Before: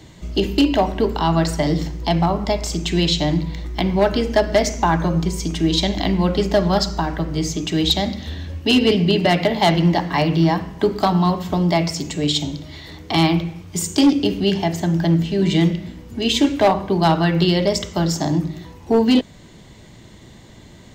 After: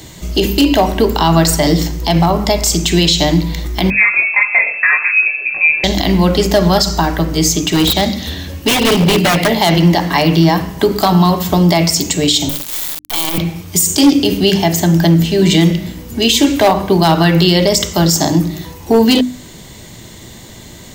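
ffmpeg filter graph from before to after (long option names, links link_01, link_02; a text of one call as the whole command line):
ffmpeg -i in.wav -filter_complex "[0:a]asettb=1/sr,asplit=3[link_01][link_02][link_03];[link_01]atrim=end=3.904[link_04];[link_02]atrim=start=3.9:end=5.84,asetpts=PTS-STARTPTS,afade=type=in:duration=0.004:curve=qsin,afade=type=out:start_time=1.936:duration=0.004:curve=qsin,highpass=frequency=89:poles=1,flanger=delay=19:depth=2.5:speed=2.3,lowpass=frequency=2300:width_type=q:width=0.5098,lowpass=frequency=2300:width_type=q:width=0.6013,lowpass=frequency=2300:width_type=q:width=0.9,lowpass=frequency=2300:width_type=q:width=2.563,afreqshift=-2700[link_05];[link_03]atrim=start=5.836[link_06];[link_04][link_05]acrossfade=duration=0.004:curve1=hsin:curve2=qsin[link_07];[link_07][link_06]acrossfade=duration=0.004:curve1=qsin:curve2=hsin,asettb=1/sr,asplit=3[link_08][link_09][link_10];[link_08]atrim=end=7.664[link_11];[link_09]atrim=start=7.66:end=9.62,asetpts=PTS-STARTPTS,afade=type=in:duration=0.004:curve=qsin,afade=type=out:start_time=1.956:duration=0.004:curve=qsin,equalizer=frequency=81:width_type=o:width=0.27:gain=-6.5,aeval=exprs='0.2*(abs(mod(val(0)/0.2+3,4)-2)-1)':channel_layout=same,acrossover=split=3500[link_12][link_13];[link_13]acompressor=threshold=-33dB:ratio=4:attack=1:release=60[link_14];[link_12][link_14]amix=inputs=2:normalize=0[link_15];[link_10]atrim=start=9.616[link_16];[link_11][link_15]acrossfade=duration=0.004:curve1=hsin:curve2=qsin[link_17];[link_17][link_16]acrossfade=duration=0.004:curve1=qsin:curve2=hsin,asettb=1/sr,asplit=3[link_18][link_19][link_20];[link_18]atrim=end=12.494[link_21];[link_19]atrim=start=12.49:end=13.38,asetpts=PTS-STARTPTS,afade=type=in:duration=0.004:curve=qsin,afade=type=out:start_time=0.886:duration=0.004:curve=qsin,highpass=frequency=220:width=0.5412,highpass=frequency=220:width=1.3066,equalizer=frequency=450:width_type=q:width=4:gain=-7,equalizer=frequency=960:width_type=q:width=4:gain=6,equalizer=frequency=3300:width_type=q:width=4:gain=7,lowpass=frequency=9200:width=0.5412,lowpass=frequency=9200:width=1.3066,acrusher=bits=3:dc=4:mix=0:aa=0.000001,asoftclip=type=hard:threshold=-10dB[link_22];[link_20]atrim=start=13.376[link_23];[link_21][link_22]acrossfade=duration=0.004:curve1=hsin:curve2=qsin[link_24];[link_24][link_23]acrossfade=duration=0.004:curve1=qsin:curve2=hsin,aemphasis=mode=production:type=50fm,bandreject=frequency=50:width_type=h:width=6,bandreject=frequency=100:width_type=h:width=6,bandreject=frequency=150:width_type=h:width=6,bandreject=frequency=200:width_type=h:width=6,bandreject=frequency=250:width_type=h:width=6,bandreject=frequency=300:width_type=h:width=6,alimiter=level_in=9.5dB:limit=-1dB:release=50:level=0:latency=1,volume=-1dB" out.wav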